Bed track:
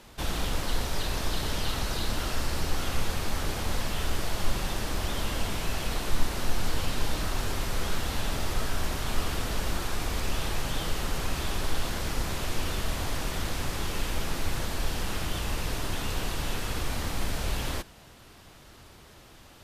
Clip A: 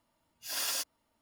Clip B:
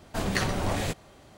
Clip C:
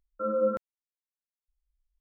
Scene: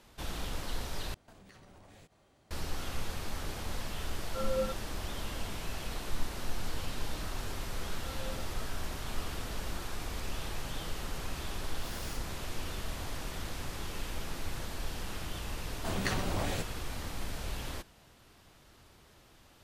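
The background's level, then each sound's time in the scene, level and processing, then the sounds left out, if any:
bed track -8 dB
1.14 s: replace with B -13.5 dB + compression 20:1, threshold -38 dBFS
4.15 s: add C -7 dB
7.85 s: add C -7 dB + compression 2:1, threshold -48 dBFS
11.35 s: add A -15.5 dB
15.70 s: add B -6 dB

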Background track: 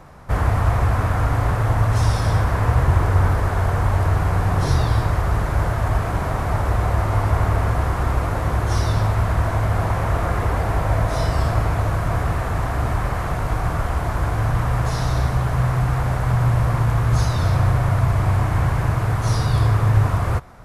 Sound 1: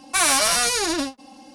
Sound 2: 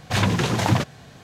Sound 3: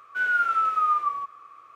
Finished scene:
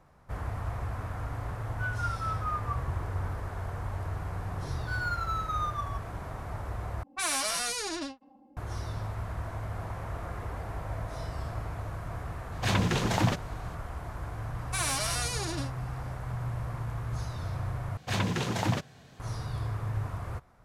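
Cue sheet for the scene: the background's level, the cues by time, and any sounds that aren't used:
background track -16.5 dB
1.64 s: add 3 -9.5 dB + tremolo of two beating tones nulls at 4.6 Hz
4.72 s: add 3 -9 dB + median filter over 15 samples
7.03 s: replace with 1 -11.5 dB + level-controlled noise filter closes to 510 Hz, open at -17.5 dBFS
12.52 s: add 2 -6 dB
14.59 s: add 1 -12.5 dB
17.97 s: replace with 2 -8.5 dB

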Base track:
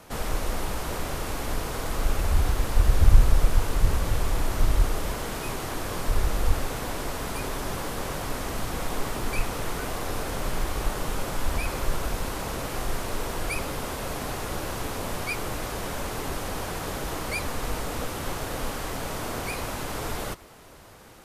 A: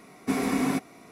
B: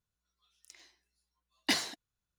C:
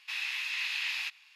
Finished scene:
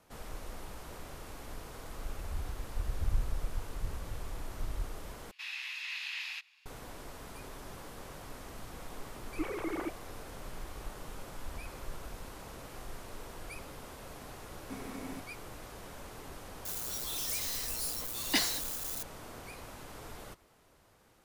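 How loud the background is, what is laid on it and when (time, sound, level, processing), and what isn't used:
base track -15.5 dB
5.31 s: replace with C -6 dB
9.11 s: add A -11 dB + formants replaced by sine waves
14.42 s: add A -18 dB
16.65 s: add B -0.5 dB + zero-crossing glitches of -28.5 dBFS

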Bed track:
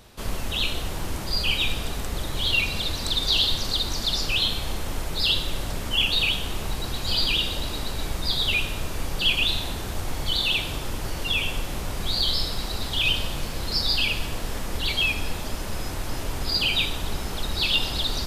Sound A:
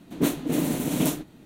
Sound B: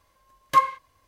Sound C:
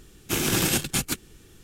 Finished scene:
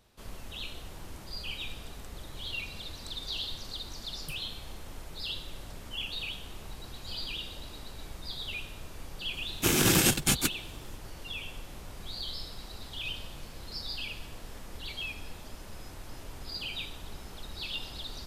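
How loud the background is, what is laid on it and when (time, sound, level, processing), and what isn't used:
bed track -14.5 dB
3.75 s: add B -3 dB + brick-wall FIR band-stop 210–8000 Hz
9.33 s: add C
not used: A

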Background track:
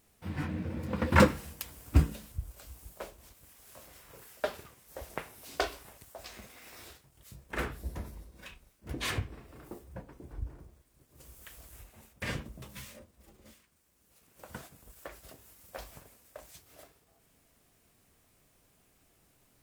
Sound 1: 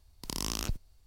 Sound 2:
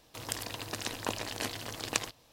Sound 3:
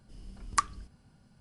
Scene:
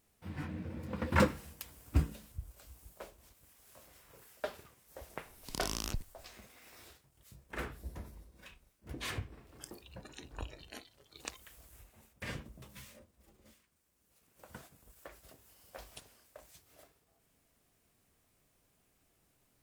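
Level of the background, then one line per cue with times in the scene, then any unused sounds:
background track -6 dB
5.25 s: add 1 -4 dB
9.32 s: add 2 -12.5 dB + spectral noise reduction 16 dB
15.39 s: add 3 -4 dB + spectral gate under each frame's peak -30 dB weak

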